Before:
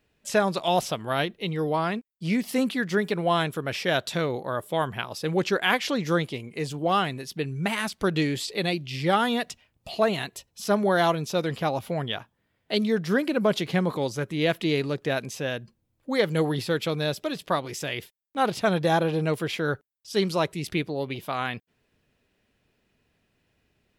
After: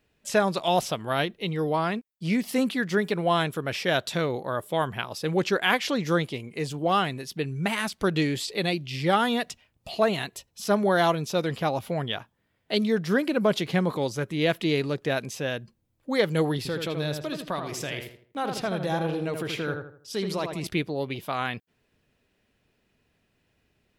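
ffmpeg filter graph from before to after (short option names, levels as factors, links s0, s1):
-filter_complex "[0:a]asettb=1/sr,asplit=3[s0][s1][s2];[s0]atrim=end=16.574[s3];[s1]atrim=start=16.57:end=20.67,asetpts=PTS-STARTPTS,afade=t=in:d=0.004:c=qsin,afade=t=out:st=4.096:d=0.004:c=qsin,acompressor=threshold=0.0355:ratio=2:attack=3.2:release=140:knee=1:detection=peak,asplit=2[s4][s5];[s5]adelay=80,lowpass=f=2300:p=1,volume=0.562,asplit=2[s6][s7];[s7]adelay=80,lowpass=f=2300:p=1,volume=0.37,asplit=2[s8][s9];[s9]adelay=80,lowpass=f=2300:p=1,volume=0.37,asplit=2[s10][s11];[s11]adelay=80,lowpass=f=2300:p=1,volume=0.37,asplit=2[s12][s13];[s13]adelay=80,lowpass=f=2300:p=1,volume=0.37[s14];[s4][s6][s8][s10][s12][s14]amix=inputs=6:normalize=0,atrim=end_sample=180810[s15];[s2]atrim=start=20.666[s16];[s3][s15]acrossfade=d=0.004:c1=hsin:c2=qsin[s17];[s17][s16]acrossfade=d=0.004:c1=qsin:c2=hsin"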